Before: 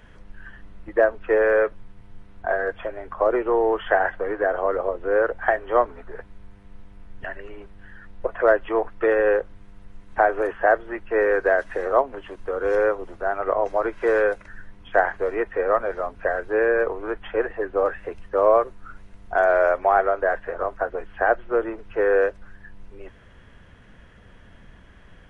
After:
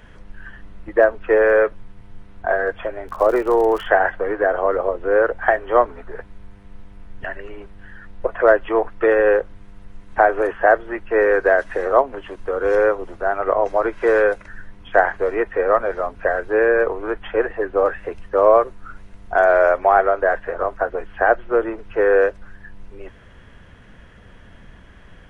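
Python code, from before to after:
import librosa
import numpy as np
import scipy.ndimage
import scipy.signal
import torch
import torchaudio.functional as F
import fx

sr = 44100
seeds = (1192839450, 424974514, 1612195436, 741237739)

y = fx.dmg_crackle(x, sr, seeds[0], per_s=100.0, level_db=-31.0, at=(3.07, 3.85), fade=0.02)
y = y * 10.0 ** (4.0 / 20.0)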